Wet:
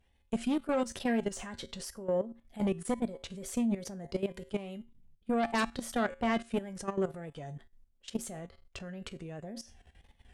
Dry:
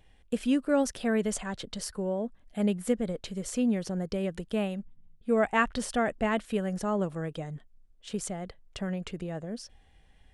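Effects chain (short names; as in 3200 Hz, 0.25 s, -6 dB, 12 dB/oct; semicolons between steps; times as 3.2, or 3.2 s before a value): wow and flutter 110 cents; reverse; upward compressor, threshold -49 dBFS; reverse; added harmonics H 5 -9 dB, 6 -17 dB, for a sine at -11.5 dBFS; resonator 77 Hz, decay 0.28 s, harmonics odd, mix 70%; level quantiser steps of 14 dB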